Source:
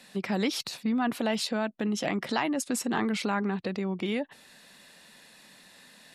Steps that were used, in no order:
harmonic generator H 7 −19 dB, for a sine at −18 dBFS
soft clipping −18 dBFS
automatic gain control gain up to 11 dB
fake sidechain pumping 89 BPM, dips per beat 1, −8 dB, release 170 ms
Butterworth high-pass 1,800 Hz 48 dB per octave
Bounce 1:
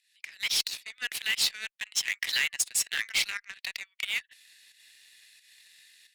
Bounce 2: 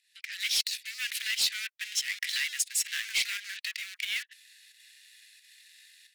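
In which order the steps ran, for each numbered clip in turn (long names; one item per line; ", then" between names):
Butterworth high-pass, then automatic gain control, then soft clipping, then fake sidechain pumping, then harmonic generator
automatic gain control, then harmonic generator, then Butterworth high-pass, then soft clipping, then fake sidechain pumping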